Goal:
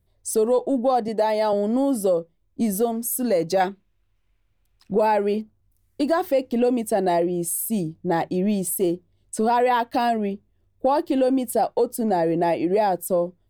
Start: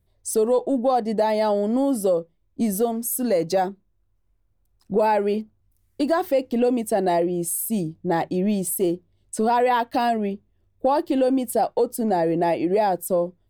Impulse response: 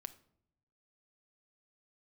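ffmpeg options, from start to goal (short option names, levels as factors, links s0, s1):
-filter_complex "[0:a]asettb=1/sr,asplit=3[s0][s1][s2];[s0]atrim=end=1.084[s3];[s1]atrim=start=1.08:end=1.53,asetpts=PTS-STARTPTS,afade=t=in:d=0.004:c=qsin,afade=t=out:st=0.446:d=0.004:c=qsin,highpass=260[s4];[s2]atrim=start=1.526[s5];[s3][s4]acrossfade=d=0.004:c1=hsin:c2=qsin[s6];[s6][s5]acrossfade=d=0.004:c1=qsin:c2=hsin,asettb=1/sr,asplit=3[s7][s8][s9];[s7]atrim=end=3.604[s10];[s8]atrim=start=3.6:end=4.94,asetpts=PTS-STARTPTS,afade=t=in:d=0.004:c=qsin,afade=t=out:st=1.336:d=0.004:c=qsin,equalizer=f=2600:t=o:w=1.7:g=14[s11];[s9]atrim=start=4.936[s12];[s10][s11]acrossfade=d=0.004:c1=hsin:c2=qsin[s13];[s13][s12]acrossfade=d=0.004:c1=qsin:c2=hsin"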